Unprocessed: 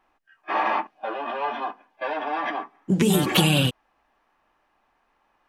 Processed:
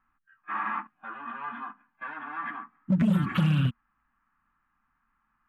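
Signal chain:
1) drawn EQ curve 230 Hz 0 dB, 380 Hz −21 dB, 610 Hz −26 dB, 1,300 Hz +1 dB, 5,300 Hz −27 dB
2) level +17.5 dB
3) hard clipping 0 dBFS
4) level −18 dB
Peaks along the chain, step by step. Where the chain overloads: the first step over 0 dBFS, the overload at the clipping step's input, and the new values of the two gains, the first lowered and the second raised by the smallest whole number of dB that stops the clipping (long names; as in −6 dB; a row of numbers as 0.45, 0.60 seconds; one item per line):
−11.5, +6.0, 0.0, −18.0 dBFS
step 2, 6.0 dB
step 2 +11.5 dB, step 4 −12 dB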